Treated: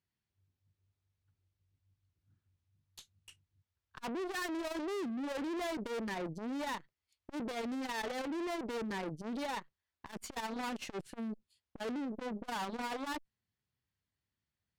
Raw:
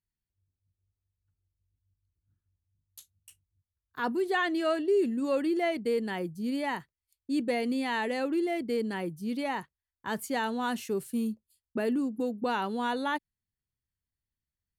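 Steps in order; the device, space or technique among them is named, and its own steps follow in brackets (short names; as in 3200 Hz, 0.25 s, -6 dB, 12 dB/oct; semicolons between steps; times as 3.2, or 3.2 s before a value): valve radio (BPF 97–4700 Hz; tube stage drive 44 dB, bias 0.7; core saturation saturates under 260 Hz); gain +9 dB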